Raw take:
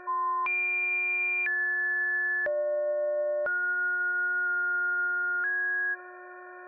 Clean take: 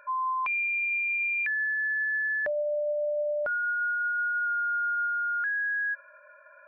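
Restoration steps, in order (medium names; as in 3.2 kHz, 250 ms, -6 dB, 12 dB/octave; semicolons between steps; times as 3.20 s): de-hum 362.3 Hz, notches 5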